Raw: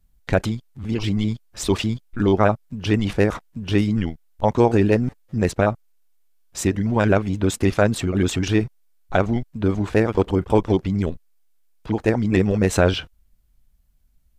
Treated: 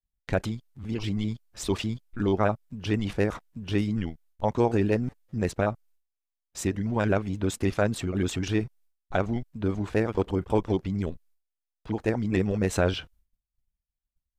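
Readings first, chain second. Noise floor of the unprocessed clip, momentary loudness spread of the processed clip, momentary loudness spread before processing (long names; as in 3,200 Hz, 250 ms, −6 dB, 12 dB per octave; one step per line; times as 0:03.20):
−59 dBFS, 9 LU, 9 LU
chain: downward expander −46 dBFS
level −7 dB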